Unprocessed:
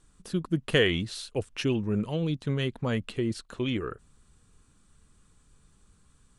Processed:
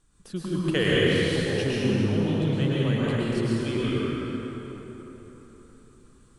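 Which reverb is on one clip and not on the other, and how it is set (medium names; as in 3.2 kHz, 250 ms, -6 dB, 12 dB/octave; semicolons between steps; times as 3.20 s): plate-style reverb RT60 4.1 s, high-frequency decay 0.6×, pre-delay 95 ms, DRR -7.5 dB; trim -4 dB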